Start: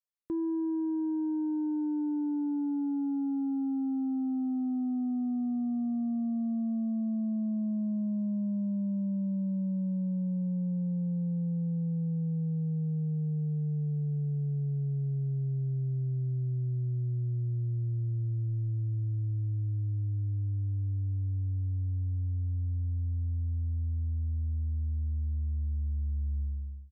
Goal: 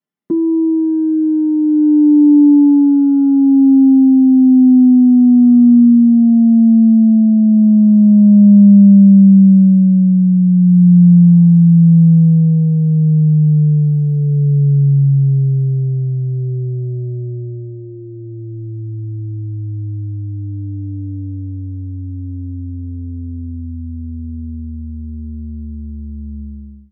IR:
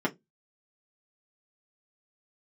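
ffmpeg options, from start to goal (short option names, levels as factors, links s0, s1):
-filter_complex "[0:a]equalizer=f=110:w=0.49:g=8[s0];[1:a]atrim=start_sample=2205[s1];[s0][s1]afir=irnorm=-1:irlink=0"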